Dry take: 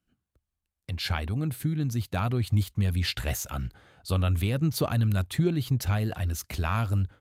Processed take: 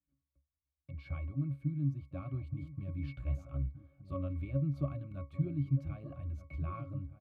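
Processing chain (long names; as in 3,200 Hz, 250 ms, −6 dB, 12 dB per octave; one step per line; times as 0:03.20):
resonances in every octave C#, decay 0.18 s
slap from a distant wall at 210 metres, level −13 dB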